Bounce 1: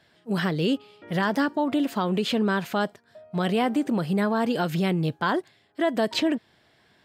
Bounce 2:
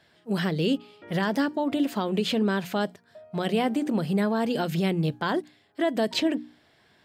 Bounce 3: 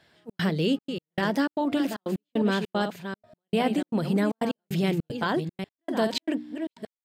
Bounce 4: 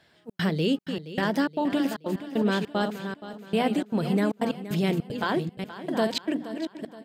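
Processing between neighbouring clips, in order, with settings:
hum notches 60/120/180/240/300 Hz; dynamic bell 1.2 kHz, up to -5 dB, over -37 dBFS, Q 1.2
chunks repeated in reverse 403 ms, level -7.5 dB; trance gate "xxx.xxxx.x.." 153 bpm -60 dB
feedback delay 473 ms, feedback 43%, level -14 dB

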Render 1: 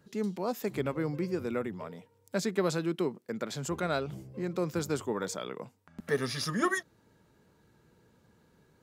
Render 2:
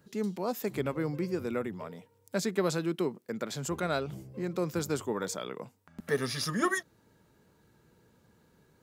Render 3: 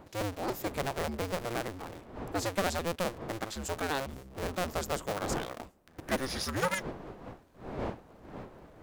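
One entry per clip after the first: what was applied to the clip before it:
treble shelf 10 kHz +5.5 dB
cycle switcher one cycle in 2, inverted; wind noise 590 Hz -43 dBFS; trim -2 dB

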